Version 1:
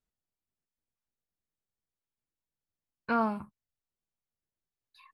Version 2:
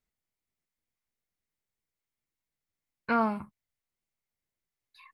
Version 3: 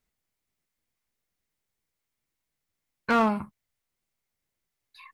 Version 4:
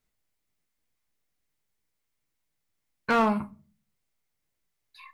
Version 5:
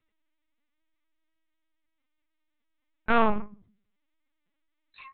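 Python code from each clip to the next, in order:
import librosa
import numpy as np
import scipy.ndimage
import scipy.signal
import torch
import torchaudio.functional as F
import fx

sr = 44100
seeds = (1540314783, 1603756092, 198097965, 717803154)

y1 = fx.peak_eq(x, sr, hz=2100.0, db=8.0, octaves=0.29)
y1 = y1 * 10.0 ** (1.5 / 20.0)
y2 = np.clip(y1, -10.0 ** (-23.0 / 20.0), 10.0 ** (-23.0 / 20.0))
y2 = y2 * 10.0 ** (5.5 / 20.0)
y3 = fx.room_shoebox(y2, sr, seeds[0], volume_m3=230.0, walls='furnished', distance_m=0.44)
y4 = fx.lpc_vocoder(y3, sr, seeds[1], excitation='pitch_kept', order=10)
y4 = y4 * 10.0 ** (2.0 / 20.0)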